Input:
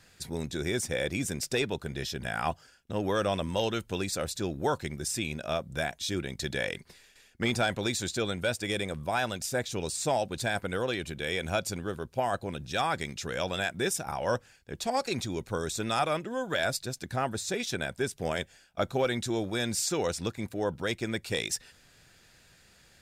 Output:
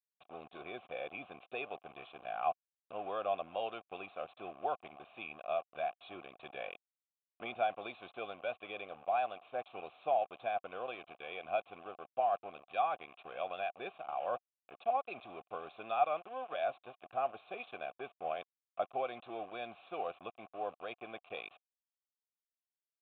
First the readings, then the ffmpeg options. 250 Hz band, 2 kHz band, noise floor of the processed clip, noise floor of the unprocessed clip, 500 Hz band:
-20.0 dB, -12.5 dB, under -85 dBFS, -60 dBFS, -7.5 dB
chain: -filter_complex "[0:a]aeval=exprs='val(0)*gte(abs(val(0)),0.0158)':c=same,aresample=8000,aresample=44100,asplit=3[s0][s1][s2];[s0]bandpass=f=730:t=q:w=8,volume=1[s3];[s1]bandpass=f=1090:t=q:w=8,volume=0.501[s4];[s2]bandpass=f=2440:t=q:w=8,volume=0.355[s5];[s3][s4][s5]amix=inputs=3:normalize=0,volume=1.33"

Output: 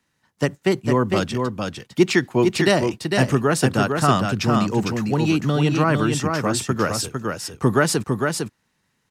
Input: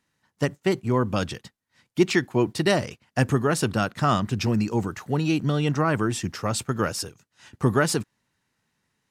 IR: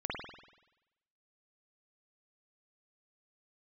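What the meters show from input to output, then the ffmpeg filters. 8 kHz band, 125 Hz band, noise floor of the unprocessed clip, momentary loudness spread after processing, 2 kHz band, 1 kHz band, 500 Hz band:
+5.0 dB, +3.5 dB, -78 dBFS, 8 LU, +5.0 dB, +5.0 dB, +5.0 dB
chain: -filter_complex "[0:a]acrossover=split=100|470|6200[s0][s1][s2][s3];[s0]acompressor=threshold=0.00501:ratio=6[s4];[s4][s1][s2][s3]amix=inputs=4:normalize=0,aecho=1:1:454:0.596,volume=1.5"

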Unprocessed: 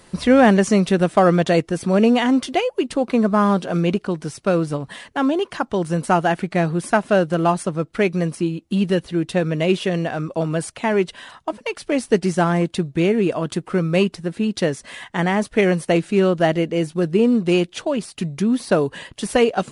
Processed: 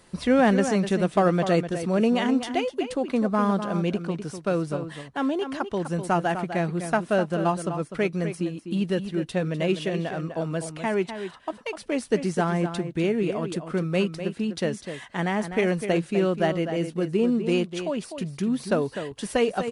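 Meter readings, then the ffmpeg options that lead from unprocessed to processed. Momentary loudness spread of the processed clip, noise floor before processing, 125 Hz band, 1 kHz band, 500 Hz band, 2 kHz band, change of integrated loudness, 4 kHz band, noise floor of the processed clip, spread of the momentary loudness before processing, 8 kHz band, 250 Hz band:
8 LU, -55 dBFS, -6.0 dB, -6.0 dB, -6.0 dB, -6.0 dB, -6.0 dB, -6.0 dB, -47 dBFS, 9 LU, -6.5 dB, -6.0 dB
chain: -filter_complex "[0:a]asplit=2[s0][s1];[s1]adelay=250.7,volume=0.355,highshelf=f=4000:g=-5.64[s2];[s0][s2]amix=inputs=2:normalize=0,volume=0.473"

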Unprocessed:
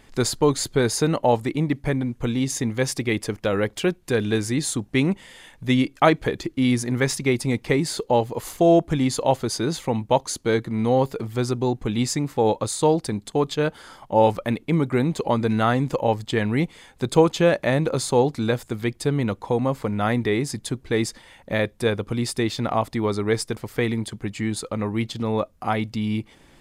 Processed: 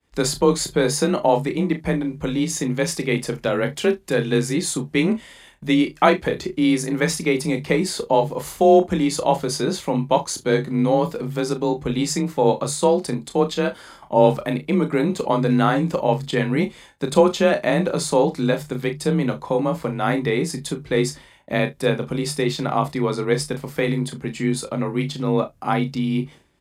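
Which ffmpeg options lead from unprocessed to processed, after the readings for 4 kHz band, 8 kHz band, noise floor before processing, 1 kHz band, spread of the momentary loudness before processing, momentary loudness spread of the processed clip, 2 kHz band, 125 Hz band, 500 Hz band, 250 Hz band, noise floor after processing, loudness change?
+1.5 dB, +1.5 dB, -54 dBFS, +2.0 dB, 7 LU, 7 LU, +2.0 dB, 0.0 dB, +2.5 dB, +2.0 dB, -48 dBFS, +2.0 dB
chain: -filter_complex "[0:a]afreqshift=29,agate=range=0.0224:threshold=0.00794:ratio=3:detection=peak,bandreject=f=50:t=h:w=6,bandreject=f=100:t=h:w=6,bandreject=f=150:t=h:w=6,asplit=2[s0][s1];[s1]adelay=36,volume=0.251[s2];[s0][s2]amix=inputs=2:normalize=0,asplit=2[s3][s4];[s4]aecho=0:1:28|41:0.299|0.15[s5];[s3][s5]amix=inputs=2:normalize=0,volume=1.12"

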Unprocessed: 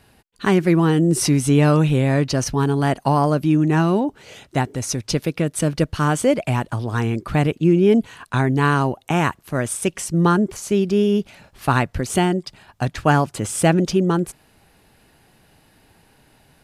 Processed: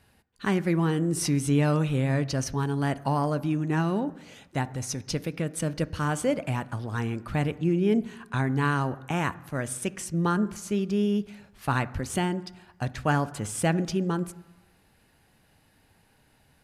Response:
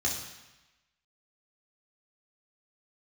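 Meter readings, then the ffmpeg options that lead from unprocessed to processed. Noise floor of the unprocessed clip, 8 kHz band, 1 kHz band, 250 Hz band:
-57 dBFS, -8.0 dB, -8.5 dB, -8.0 dB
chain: -filter_complex "[0:a]asplit=2[s0][s1];[s1]highshelf=f=2400:t=q:w=1.5:g=-6[s2];[1:a]atrim=start_sample=2205,lowpass=4600[s3];[s2][s3]afir=irnorm=-1:irlink=0,volume=0.106[s4];[s0][s4]amix=inputs=2:normalize=0,volume=0.398"

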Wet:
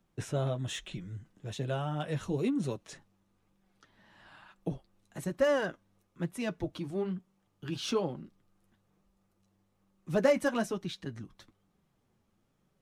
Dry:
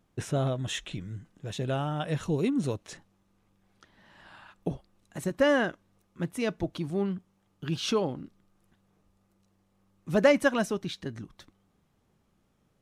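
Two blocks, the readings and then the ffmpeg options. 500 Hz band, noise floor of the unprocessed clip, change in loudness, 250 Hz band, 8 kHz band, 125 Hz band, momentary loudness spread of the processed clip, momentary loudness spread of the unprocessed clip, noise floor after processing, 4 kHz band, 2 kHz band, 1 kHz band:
-3.5 dB, -71 dBFS, -4.0 dB, -4.5 dB, -4.0 dB, -3.5 dB, 18 LU, 17 LU, -75 dBFS, -5.0 dB, -6.5 dB, -4.5 dB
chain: -filter_complex "[0:a]flanger=delay=5.2:depth=4.4:regen=-35:speed=1.1:shape=sinusoidal,acrossover=split=210|1400|3800[s0][s1][s2][s3];[s2]asoftclip=type=hard:threshold=0.01[s4];[s0][s1][s4][s3]amix=inputs=4:normalize=0"

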